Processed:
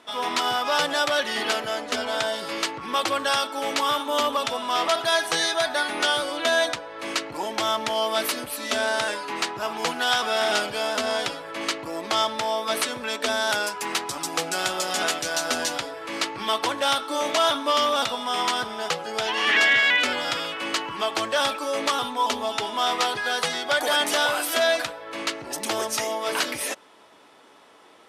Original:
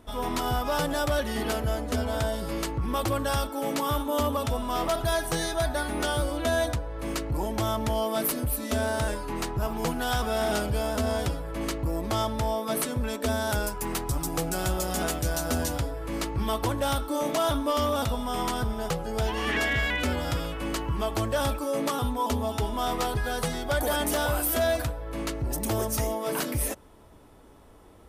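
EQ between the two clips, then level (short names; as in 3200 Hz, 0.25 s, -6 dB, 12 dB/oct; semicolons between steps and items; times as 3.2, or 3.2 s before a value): BPF 190–3600 Hz; tilt +4.5 dB/oct; +5.5 dB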